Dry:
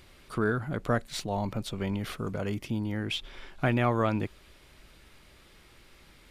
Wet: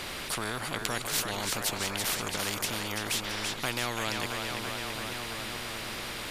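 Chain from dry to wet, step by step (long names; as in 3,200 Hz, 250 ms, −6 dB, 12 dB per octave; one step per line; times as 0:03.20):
echo with a time of its own for lows and highs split 450 Hz, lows 438 ms, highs 334 ms, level −10.5 dB
every bin compressed towards the loudest bin 4 to 1
level +7 dB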